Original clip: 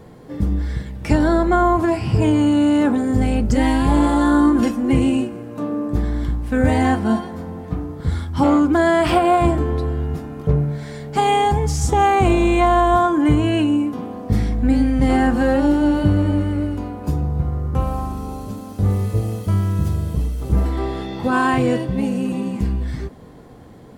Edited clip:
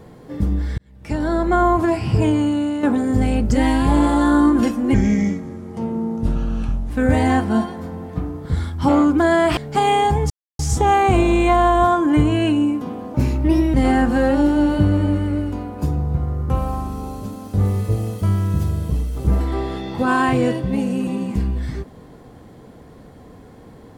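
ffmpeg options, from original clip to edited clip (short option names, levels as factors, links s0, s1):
-filter_complex "[0:a]asplit=9[s0][s1][s2][s3][s4][s5][s6][s7][s8];[s0]atrim=end=0.78,asetpts=PTS-STARTPTS,afade=t=out:st=0.776:d=0.004:c=hsin[s9];[s1]atrim=start=0.78:end=2.83,asetpts=PTS-STARTPTS,afade=t=in:d=0.83,afade=t=out:st=1.4:d=0.65:silence=0.334965[s10];[s2]atrim=start=2.83:end=4.944,asetpts=PTS-STARTPTS,afade=t=in:d=0.004:c=hsin:silence=0.334965[s11];[s3]atrim=start=4.94:end=6.45,asetpts=PTS-STARTPTS,asetrate=33957,aresample=44100[s12];[s4]atrim=start=6.446:end=9.122[s13];[s5]atrim=start=10.978:end=11.71,asetpts=PTS-STARTPTS,afade=t=out:st=0.728:d=0.004:c=hsin,apad=pad_dur=0.29[s14];[s6]atrim=start=11.71:end=14.264,asetpts=PTS-STARTPTS,afade=t=in:d=0.004:c=hsin[s15];[s7]atrim=start=14.26:end=14.99,asetpts=PTS-STARTPTS,asetrate=53802,aresample=44100[s16];[s8]atrim=start=14.986[s17];[s9][s10][s11]concat=n=3:v=0:a=1[s18];[s18][s12]acrossfade=d=0.004:c1=hsin:c2=hsin[s19];[s19][s13]acrossfade=d=0.004:c1=hsin:c2=hsin[s20];[s14][s15]concat=n=2:v=0:a=1[s21];[s20][s21]acrossfade=d=0.004:c1=hsin:c2=hsin[s22];[s22][s16]acrossfade=d=0.004:c1=hsin:c2=hsin[s23];[s23][s17]acrossfade=d=0.004:c1=hsin:c2=hsin"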